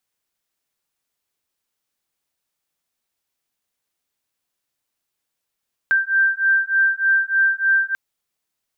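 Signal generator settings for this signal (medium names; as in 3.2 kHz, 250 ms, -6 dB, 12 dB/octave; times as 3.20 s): beating tones 1.57 kHz, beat 3.3 Hz, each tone -18 dBFS 2.04 s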